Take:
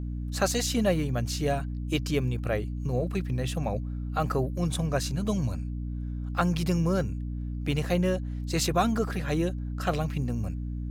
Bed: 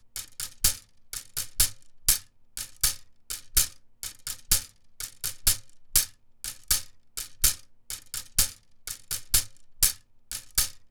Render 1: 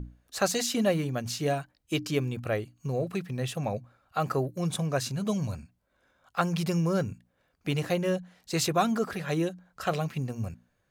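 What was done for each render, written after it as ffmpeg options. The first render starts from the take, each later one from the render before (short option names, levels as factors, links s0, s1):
-af "bandreject=f=60:t=h:w=6,bandreject=f=120:t=h:w=6,bandreject=f=180:t=h:w=6,bandreject=f=240:t=h:w=6,bandreject=f=300:t=h:w=6"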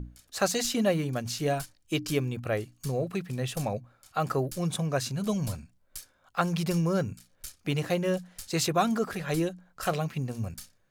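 -filter_complex "[1:a]volume=0.0944[s0];[0:a][s0]amix=inputs=2:normalize=0"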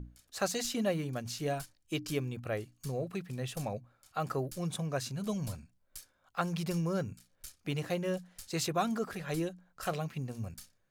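-af "volume=0.501"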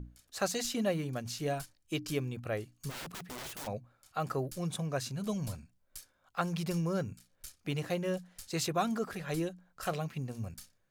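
-filter_complex "[0:a]asplit=3[s0][s1][s2];[s0]afade=t=out:st=2.89:d=0.02[s3];[s1]aeval=exprs='(mod(79.4*val(0)+1,2)-1)/79.4':c=same,afade=t=in:st=2.89:d=0.02,afade=t=out:st=3.66:d=0.02[s4];[s2]afade=t=in:st=3.66:d=0.02[s5];[s3][s4][s5]amix=inputs=3:normalize=0"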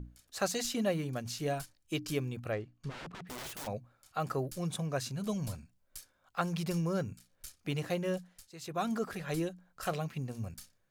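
-filter_complex "[0:a]asettb=1/sr,asplit=3[s0][s1][s2];[s0]atrim=end=2.524[s3];[s1]atrim=start=2.52:end=3.27,asetpts=PTS-STARTPTS,afade=t=in:d=0.004:c=qsin,afade=t=out:st=0.746:d=0.004:c=qsin,adynamicsmooth=sensitivity=7.5:basefreq=2600[s4];[s2]atrim=start=3.266[s5];[s3][s4]acrossfade=d=0.004:c1=hsin:c2=qsin[s6];[s6][s5]acrossfade=d=0.004:c1=qsin:c2=hsin,asplit=3[s7][s8][s9];[s7]atrim=end=8.51,asetpts=PTS-STARTPTS,afade=t=out:st=8.19:d=0.32:silence=0.16788[s10];[s8]atrim=start=8.51:end=8.6,asetpts=PTS-STARTPTS,volume=0.168[s11];[s9]atrim=start=8.6,asetpts=PTS-STARTPTS,afade=t=in:d=0.32:silence=0.16788[s12];[s10][s11][s12]concat=n=3:v=0:a=1"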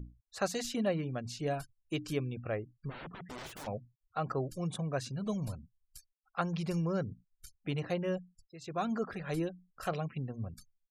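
-af "highshelf=f=3500:g=-5.5,afftfilt=real='re*gte(hypot(re,im),0.00251)':imag='im*gte(hypot(re,im),0.00251)':win_size=1024:overlap=0.75"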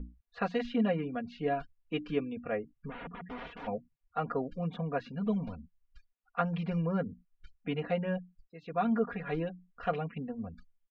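-af "lowpass=f=2900:w=0.5412,lowpass=f=2900:w=1.3066,aecho=1:1:4.2:0.93"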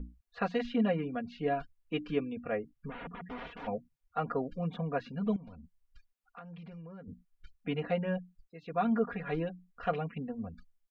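-filter_complex "[0:a]asettb=1/sr,asplit=3[s0][s1][s2];[s0]atrim=end=5.364[s3];[s1]atrim=start=5.36:end=7.08,asetpts=PTS-STARTPTS,afade=t=in:d=0.004:c=qsin,afade=t=out:st=1.716:d=0.004:c=qsin,acompressor=threshold=0.00501:ratio=6:attack=3.2:release=140:knee=1:detection=peak[s4];[s2]atrim=start=7.076[s5];[s3][s4]acrossfade=d=0.004:c1=hsin:c2=qsin[s6];[s6][s5]acrossfade=d=0.004:c1=qsin:c2=hsin"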